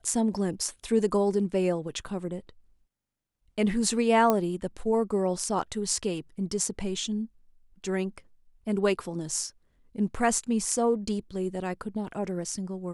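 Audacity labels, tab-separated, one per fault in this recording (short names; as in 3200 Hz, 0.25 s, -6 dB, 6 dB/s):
4.300000	4.300000	pop -10 dBFS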